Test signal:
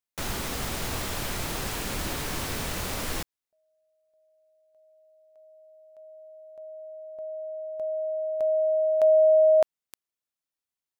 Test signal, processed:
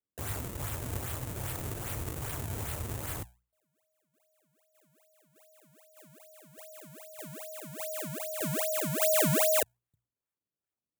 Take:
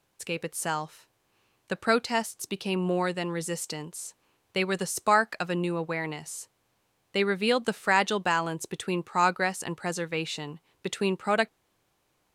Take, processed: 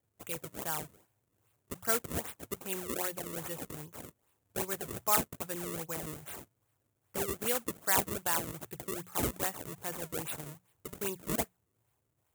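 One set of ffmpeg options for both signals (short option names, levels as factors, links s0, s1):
-af "lowshelf=f=150:t=q:w=3:g=8,bandreject=f=60:t=h:w=6,bandreject=f=120:t=h:w=6,bandreject=f=180:t=h:w=6,acrusher=samples=32:mix=1:aa=0.000001:lfo=1:lforange=51.2:lforate=2.5,aexciter=amount=4.8:drive=3.1:freq=6700,highpass=64,volume=0.355"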